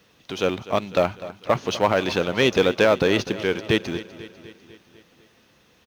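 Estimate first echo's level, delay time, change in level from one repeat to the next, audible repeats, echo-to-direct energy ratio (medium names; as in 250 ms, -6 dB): -16.0 dB, 249 ms, -4.5 dB, 5, -14.0 dB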